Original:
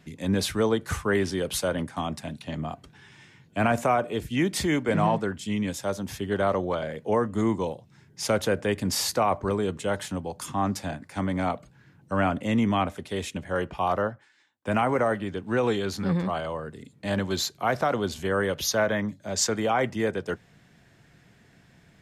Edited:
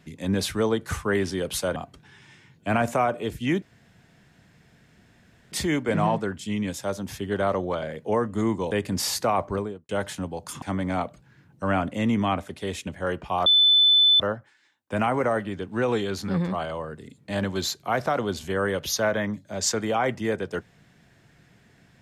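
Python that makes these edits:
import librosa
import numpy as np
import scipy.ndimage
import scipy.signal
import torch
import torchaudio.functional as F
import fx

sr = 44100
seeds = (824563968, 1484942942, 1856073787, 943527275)

y = fx.studio_fade_out(x, sr, start_s=9.41, length_s=0.41)
y = fx.edit(y, sr, fx.cut(start_s=1.76, length_s=0.9),
    fx.insert_room_tone(at_s=4.52, length_s=1.9),
    fx.cut(start_s=7.71, length_s=0.93),
    fx.cut(start_s=10.55, length_s=0.56),
    fx.insert_tone(at_s=13.95, length_s=0.74, hz=3510.0, db=-14.0), tone=tone)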